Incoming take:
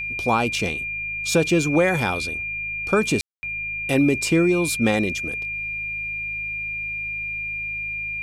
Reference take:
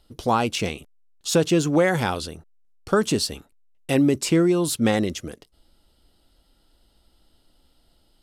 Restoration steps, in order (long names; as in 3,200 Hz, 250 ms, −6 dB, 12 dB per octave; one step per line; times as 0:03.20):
hum removal 52.9 Hz, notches 3
notch filter 2,400 Hz, Q 30
ambience match 0:03.21–0:03.43